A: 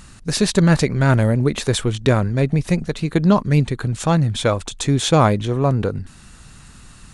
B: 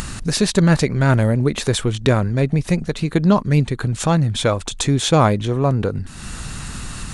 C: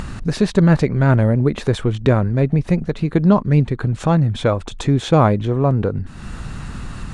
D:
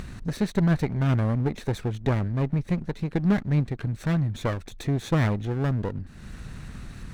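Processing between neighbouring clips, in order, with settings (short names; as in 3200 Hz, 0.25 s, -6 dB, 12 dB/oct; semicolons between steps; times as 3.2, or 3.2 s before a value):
upward compressor, threshold -16 dBFS
LPF 1400 Hz 6 dB/oct; gain +1.5 dB
minimum comb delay 0.51 ms; gain -9 dB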